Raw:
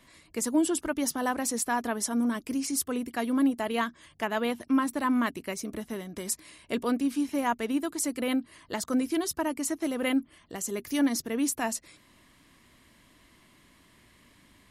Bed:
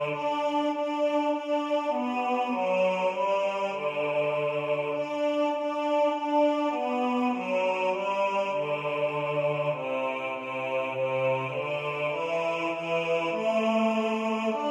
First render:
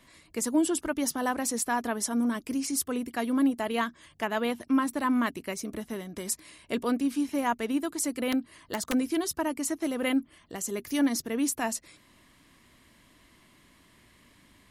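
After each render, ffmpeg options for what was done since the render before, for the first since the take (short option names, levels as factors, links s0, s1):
-filter_complex "[0:a]asettb=1/sr,asplit=3[s0][s1][s2];[s0]atrim=end=8.324[s3];[s1]atrim=start=8.32:end=8.93,asetpts=PTS-STARTPTS,afade=t=in:d=0.004:c=qsin,afade=t=out:st=0.606:d=0.004:c=qsin,aeval=exprs='(mod(9.44*val(0)+1,2)-1)/9.44':c=same[s4];[s2]atrim=start=8.926[s5];[s3][s4]acrossfade=d=0.004:c1=hsin:c2=qsin[s6];[s6][s5]acrossfade=d=0.004:c1=qsin:c2=hsin"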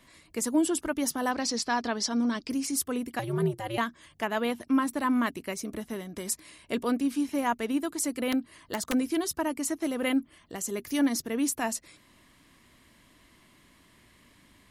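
-filter_complex "[0:a]asettb=1/sr,asplit=3[s0][s1][s2];[s0]atrim=end=1.314[s3];[s1]atrim=start=1.31:end=2.5,asetpts=PTS-STARTPTS,afade=t=in:d=0.004:c=qsin,afade=t=out:st=1.186:d=0.004:c=qsin,lowpass=f=4800:t=q:w=4.1[s4];[s2]atrim=start=2.496[s5];[s3][s4]acrossfade=d=0.004:c1=hsin:c2=qsin[s6];[s6][s5]acrossfade=d=0.004:c1=qsin:c2=hsin,asettb=1/sr,asplit=3[s7][s8][s9];[s7]atrim=end=3.194[s10];[s8]atrim=start=3.19:end=3.78,asetpts=PTS-STARTPTS,afade=t=in:d=0.004:c=qsin,afade=t=out:st=0.586:d=0.004:c=qsin,aeval=exprs='val(0)*sin(2*PI*110*n/s)':c=same[s11];[s9]atrim=start=3.776[s12];[s10][s11]acrossfade=d=0.004:c1=hsin:c2=qsin[s13];[s13][s12]acrossfade=d=0.004:c1=qsin:c2=hsin"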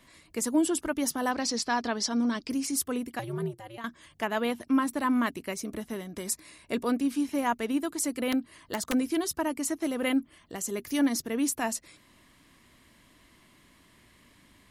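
-filter_complex "[0:a]asettb=1/sr,asplit=3[s0][s1][s2];[s0]atrim=end=6.244[s3];[s1]atrim=start=6.24:end=6.89,asetpts=PTS-STARTPTS,afade=t=in:d=0.004:c=qsin,afade=t=out:st=0.646:d=0.004:c=qsin,bandreject=f=3100:w=8.9[s4];[s2]atrim=start=6.886[s5];[s3][s4]acrossfade=d=0.004:c1=hsin:c2=qsin[s6];[s6][s5]acrossfade=d=0.004:c1=qsin:c2=hsin,asplit=2[s7][s8];[s7]atrim=end=3.84,asetpts=PTS-STARTPTS,afade=t=out:st=2.93:d=0.91:silence=0.158489[s9];[s8]atrim=start=3.84,asetpts=PTS-STARTPTS,afade=t=in:d=0.004:c=hsin:silence=0.158489[s10];[s9][s10]concat=n=2:v=0:a=1"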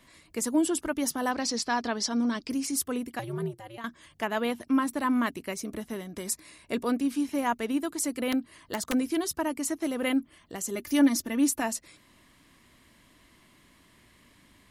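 -filter_complex "[0:a]asettb=1/sr,asplit=3[s0][s1][s2];[s0]atrim=end=10.754[s3];[s1]atrim=start=10.75:end=11.62,asetpts=PTS-STARTPTS,afade=t=in:d=0.004:c=qsin,afade=t=out:st=0.866:d=0.004:c=qsin,aecho=1:1:3.4:0.64,atrim=end_sample=38367[s4];[s2]atrim=start=11.616[s5];[s3][s4]acrossfade=d=0.004:c1=hsin:c2=qsin[s6];[s6][s5]acrossfade=d=0.004:c1=qsin:c2=hsin"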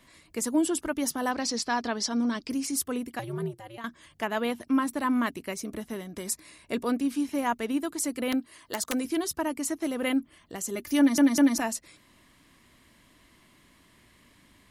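-filter_complex "[0:a]asettb=1/sr,asplit=3[s0][s1][s2];[s0]atrim=end=8.404[s3];[s1]atrim=start=8.4:end=9.05,asetpts=PTS-STARTPTS,afade=t=in:d=0.004:c=qsin,afade=t=out:st=0.646:d=0.004:c=qsin,bass=f=250:g=-7,treble=f=4000:g=4[s4];[s2]atrim=start=9.046[s5];[s3][s4]acrossfade=d=0.004:c1=hsin:c2=qsin[s6];[s6][s5]acrossfade=d=0.004:c1=qsin:c2=hsin,asplit=4[s7][s8][s9][s10];[s7]atrim=end=11.182[s11];[s8]atrim=start=10.978:end=11.182[s12];[s9]atrim=start=10.978:end=11.182[s13];[s10]atrim=start=11.578[s14];[s11][s12]acrossfade=d=0.004:c1=hsin:c2=hsin[s15];[s15][s13]acrossfade=d=0.004:c1=hsin:c2=hsin[s16];[s16][s14]acrossfade=d=0.004:c1=hsin:c2=hsin"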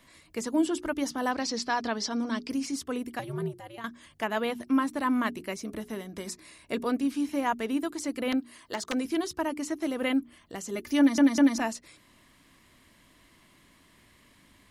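-filter_complex "[0:a]bandreject=f=60:t=h:w=6,bandreject=f=120:t=h:w=6,bandreject=f=180:t=h:w=6,bandreject=f=240:t=h:w=6,bandreject=f=300:t=h:w=6,bandreject=f=360:t=h:w=6,bandreject=f=420:t=h:w=6,acrossover=split=6400[s0][s1];[s1]acompressor=threshold=0.00316:ratio=4:attack=1:release=60[s2];[s0][s2]amix=inputs=2:normalize=0"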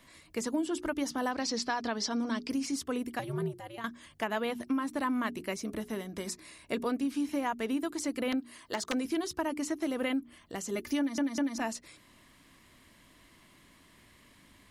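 -af "acompressor=threshold=0.0447:ratio=12"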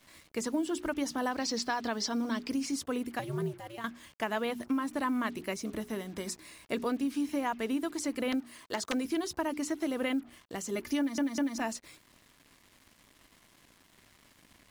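-af "acrusher=bits=8:mix=0:aa=0.5"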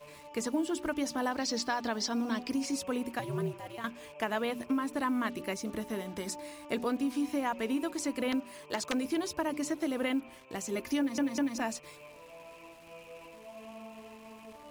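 -filter_complex "[1:a]volume=0.075[s0];[0:a][s0]amix=inputs=2:normalize=0"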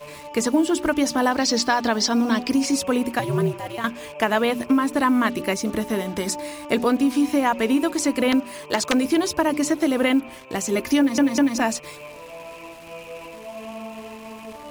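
-af "volume=3.98"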